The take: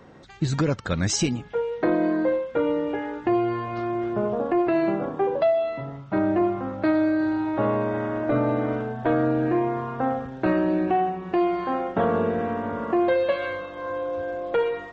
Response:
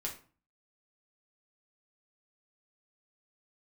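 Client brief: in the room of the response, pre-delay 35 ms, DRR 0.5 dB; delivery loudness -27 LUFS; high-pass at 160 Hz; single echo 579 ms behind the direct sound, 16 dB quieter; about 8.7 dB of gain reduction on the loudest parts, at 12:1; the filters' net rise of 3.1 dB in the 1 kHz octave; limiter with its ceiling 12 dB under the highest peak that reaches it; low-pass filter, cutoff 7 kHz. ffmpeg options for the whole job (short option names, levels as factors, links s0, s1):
-filter_complex "[0:a]highpass=160,lowpass=7000,equalizer=f=1000:t=o:g=4.5,acompressor=threshold=0.0562:ratio=12,alimiter=level_in=1.19:limit=0.0631:level=0:latency=1,volume=0.841,aecho=1:1:579:0.158,asplit=2[s0][s1];[1:a]atrim=start_sample=2205,adelay=35[s2];[s1][s2]afir=irnorm=-1:irlink=0,volume=0.891[s3];[s0][s3]amix=inputs=2:normalize=0,volume=1.5"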